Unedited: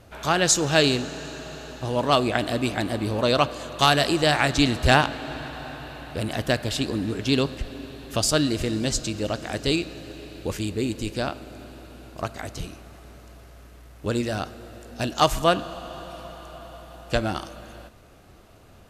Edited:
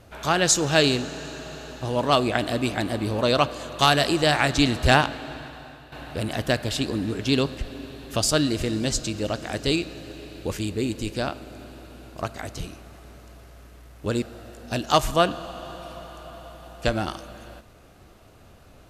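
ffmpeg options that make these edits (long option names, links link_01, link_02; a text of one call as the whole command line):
ffmpeg -i in.wav -filter_complex "[0:a]asplit=3[link_01][link_02][link_03];[link_01]atrim=end=5.92,asetpts=PTS-STARTPTS,afade=type=out:start_time=4.95:duration=0.97:silence=0.281838[link_04];[link_02]atrim=start=5.92:end=14.222,asetpts=PTS-STARTPTS,afade=type=in:duration=0.004:curve=hsin:silence=0.281838[link_05];[link_03]atrim=start=14.498[link_06];[link_04][link_05]concat=n=2:v=0:a=1[link_07];[link_07][link_06]acrossfade=duration=0.004:curve1=hsin:curve2=hsin" out.wav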